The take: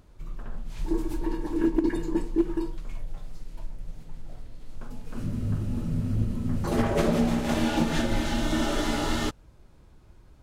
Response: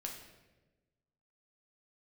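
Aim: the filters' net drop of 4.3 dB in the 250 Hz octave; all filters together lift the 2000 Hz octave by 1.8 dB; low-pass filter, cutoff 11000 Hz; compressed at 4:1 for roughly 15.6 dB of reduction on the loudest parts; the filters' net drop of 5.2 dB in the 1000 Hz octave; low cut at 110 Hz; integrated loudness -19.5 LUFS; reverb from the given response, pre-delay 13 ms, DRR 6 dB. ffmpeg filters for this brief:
-filter_complex "[0:a]highpass=110,lowpass=11k,equalizer=f=250:t=o:g=-5,equalizer=f=1k:t=o:g=-8,equalizer=f=2k:t=o:g=5,acompressor=threshold=-42dB:ratio=4,asplit=2[a][b];[1:a]atrim=start_sample=2205,adelay=13[c];[b][c]afir=irnorm=-1:irlink=0,volume=-4.5dB[d];[a][d]amix=inputs=2:normalize=0,volume=24dB"

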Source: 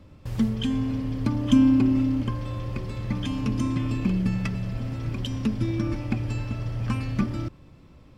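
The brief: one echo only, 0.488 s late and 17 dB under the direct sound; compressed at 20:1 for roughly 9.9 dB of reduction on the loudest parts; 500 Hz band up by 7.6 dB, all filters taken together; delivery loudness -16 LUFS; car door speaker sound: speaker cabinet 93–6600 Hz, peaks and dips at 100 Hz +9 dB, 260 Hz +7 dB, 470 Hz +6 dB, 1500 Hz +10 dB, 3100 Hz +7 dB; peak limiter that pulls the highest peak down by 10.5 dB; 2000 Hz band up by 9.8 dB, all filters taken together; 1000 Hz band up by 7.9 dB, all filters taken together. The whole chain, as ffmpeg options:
-af "equalizer=f=500:t=o:g=4.5,equalizer=f=1k:t=o:g=4.5,equalizer=f=2k:t=o:g=5,acompressor=threshold=-21dB:ratio=20,alimiter=limit=-22.5dB:level=0:latency=1,highpass=93,equalizer=f=100:t=q:w=4:g=9,equalizer=f=260:t=q:w=4:g=7,equalizer=f=470:t=q:w=4:g=6,equalizer=f=1.5k:t=q:w=4:g=10,equalizer=f=3.1k:t=q:w=4:g=7,lowpass=f=6.6k:w=0.5412,lowpass=f=6.6k:w=1.3066,aecho=1:1:488:0.141,volume=10.5dB"

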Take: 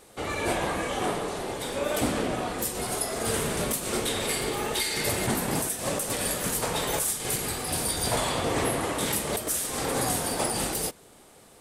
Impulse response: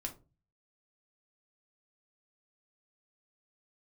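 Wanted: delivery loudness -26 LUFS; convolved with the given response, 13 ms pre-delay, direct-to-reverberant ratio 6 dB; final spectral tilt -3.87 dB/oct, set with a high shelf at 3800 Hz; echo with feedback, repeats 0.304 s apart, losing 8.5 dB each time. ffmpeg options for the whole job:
-filter_complex "[0:a]highshelf=f=3.8k:g=-4,aecho=1:1:304|608|912|1216:0.376|0.143|0.0543|0.0206,asplit=2[a][b];[1:a]atrim=start_sample=2205,adelay=13[c];[b][c]afir=irnorm=-1:irlink=0,volume=-5dB[d];[a][d]amix=inputs=2:normalize=0,volume=1.5dB"

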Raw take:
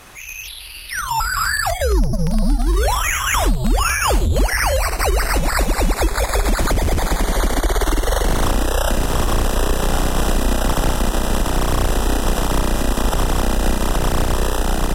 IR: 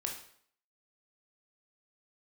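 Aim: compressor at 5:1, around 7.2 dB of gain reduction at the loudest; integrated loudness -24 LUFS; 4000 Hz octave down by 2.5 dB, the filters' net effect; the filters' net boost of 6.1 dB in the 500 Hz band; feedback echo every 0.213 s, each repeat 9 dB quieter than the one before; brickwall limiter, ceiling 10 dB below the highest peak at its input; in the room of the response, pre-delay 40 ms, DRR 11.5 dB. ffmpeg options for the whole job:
-filter_complex "[0:a]equalizer=f=500:t=o:g=7.5,equalizer=f=4k:t=o:g=-3.5,acompressor=threshold=-19dB:ratio=5,alimiter=limit=-20.5dB:level=0:latency=1,aecho=1:1:213|426|639|852:0.355|0.124|0.0435|0.0152,asplit=2[a][b];[1:a]atrim=start_sample=2205,adelay=40[c];[b][c]afir=irnorm=-1:irlink=0,volume=-12.5dB[d];[a][d]amix=inputs=2:normalize=0,volume=5dB"

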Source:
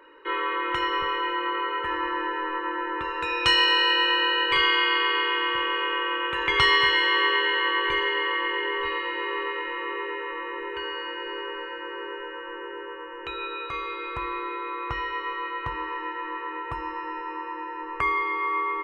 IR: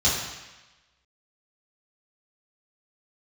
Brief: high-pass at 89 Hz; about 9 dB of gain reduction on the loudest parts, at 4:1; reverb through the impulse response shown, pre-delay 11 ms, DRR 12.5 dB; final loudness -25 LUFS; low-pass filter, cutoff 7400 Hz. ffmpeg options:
-filter_complex "[0:a]highpass=89,lowpass=7.4k,acompressor=threshold=-27dB:ratio=4,asplit=2[a][b];[1:a]atrim=start_sample=2205,adelay=11[c];[b][c]afir=irnorm=-1:irlink=0,volume=-27dB[d];[a][d]amix=inputs=2:normalize=0,volume=5.5dB"

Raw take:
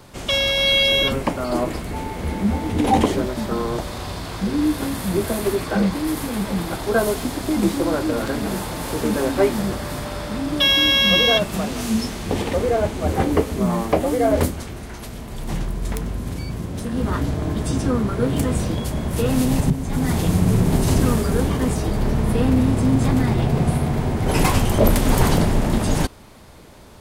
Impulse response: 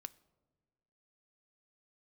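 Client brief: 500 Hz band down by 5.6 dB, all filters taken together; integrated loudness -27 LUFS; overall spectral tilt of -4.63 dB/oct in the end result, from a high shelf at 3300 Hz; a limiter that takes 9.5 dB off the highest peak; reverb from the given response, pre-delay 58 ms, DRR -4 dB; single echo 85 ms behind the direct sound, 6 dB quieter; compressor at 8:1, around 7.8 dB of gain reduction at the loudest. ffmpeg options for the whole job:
-filter_complex "[0:a]equalizer=f=500:t=o:g=-7,highshelf=f=3.3k:g=-7,acompressor=threshold=-19dB:ratio=8,alimiter=limit=-19.5dB:level=0:latency=1,aecho=1:1:85:0.501,asplit=2[a][b];[1:a]atrim=start_sample=2205,adelay=58[c];[b][c]afir=irnorm=-1:irlink=0,volume=9dB[d];[a][d]amix=inputs=2:normalize=0,volume=-5dB"

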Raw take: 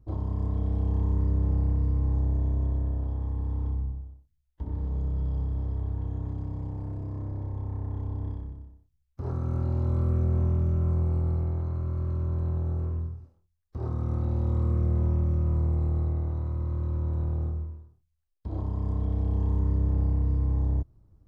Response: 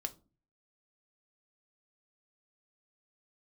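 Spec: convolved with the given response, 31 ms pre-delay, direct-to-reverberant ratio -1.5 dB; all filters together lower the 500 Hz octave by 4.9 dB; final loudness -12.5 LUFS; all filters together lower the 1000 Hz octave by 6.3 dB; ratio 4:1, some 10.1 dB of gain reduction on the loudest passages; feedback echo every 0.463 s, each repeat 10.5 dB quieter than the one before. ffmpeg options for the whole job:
-filter_complex "[0:a]equalizer=f=500:t=o:g=-6,equalizer=f=1k:t=o:g=-6,acompressor=threshold=-34dB:ratio=4,aecho=1:1:463|926|1389:0.299|0.0896|0.0269,asplit=2[a][b];[1:a]atrim=start_sample=2205,adelay=31[c];[b][c]afir=irnorm=-1:irlink=0,volume=2.5dB[d];[a][d]amix=inputs=2:normalize=0,volume=21.5dB"

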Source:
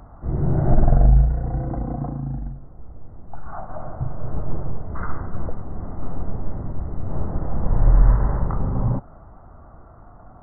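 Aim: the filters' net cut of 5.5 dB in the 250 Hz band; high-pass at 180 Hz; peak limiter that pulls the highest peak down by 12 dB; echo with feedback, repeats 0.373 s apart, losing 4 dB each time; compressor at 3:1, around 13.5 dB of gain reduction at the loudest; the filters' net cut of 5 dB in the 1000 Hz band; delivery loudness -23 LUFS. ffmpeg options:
-af "highpass=180,equalizer=f=250:t=o:g=-4.5,equalizer=f=1k:t=o:g=-7,acompressor=threshold=-42dB:ratio=3,alimiter=level_in=14.5dB:limit=-24dB:level=0:latency=1,volume=-14.5dB,aecho=1:1:373|746|1119|1492|1865|2238|2611|2984|3357:0.631|0.398|0.25|0.158|0.0994|0.0626|0.0394|0.0249|0.0157,volume=23dB"

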